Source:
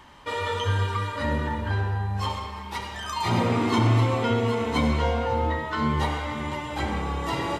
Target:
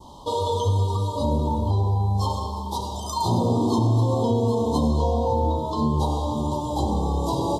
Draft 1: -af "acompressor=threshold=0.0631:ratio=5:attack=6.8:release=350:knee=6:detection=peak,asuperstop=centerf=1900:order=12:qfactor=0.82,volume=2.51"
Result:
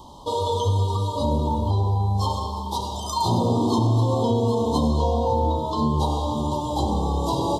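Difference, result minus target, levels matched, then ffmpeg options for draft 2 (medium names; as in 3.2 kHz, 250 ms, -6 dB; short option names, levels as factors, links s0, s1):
2 kHz band +4.5 dB
-af "acompressor=threshold=0.0631:ratio=5:attack=6.8:release=350:knee=6:detection=peak,adynamicequalizer=threshold=0.00447:dfrequency=2300:dqfactor=0.77:tfrequency=2300:tqfactor=0.77:attack=5:release=100:ratio=0.417:range=3:mode=cutabove:tftype=bell,asuperstop=centerf=1900:order=12:qfactor=0.82,volume=2.51"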